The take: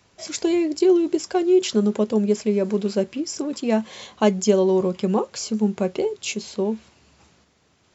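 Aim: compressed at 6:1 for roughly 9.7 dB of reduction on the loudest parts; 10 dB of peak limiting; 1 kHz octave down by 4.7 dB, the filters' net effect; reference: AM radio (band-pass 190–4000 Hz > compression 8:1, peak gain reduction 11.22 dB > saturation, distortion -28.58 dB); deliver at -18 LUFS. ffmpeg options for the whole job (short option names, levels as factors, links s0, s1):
-af "equalizer=f=1000:t=o:g=-6.5,acompressor=threshold=0.0708:ratio=6,alimiter=limit=0.0708:level=0:latency=1,highpass=190,lowpass=4000,acompressor=threshold=0.0141:ratio=8,asoftclip=threshold=0.0422,volume=15"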